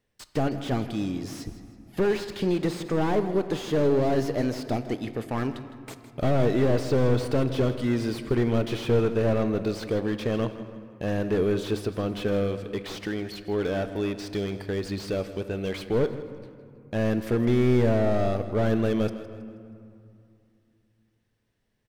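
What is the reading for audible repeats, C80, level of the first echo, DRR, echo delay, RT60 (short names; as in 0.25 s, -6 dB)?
3, 10.5 dB, -14.5 dB, 9.0 dB, 0.16 s, 2.6 s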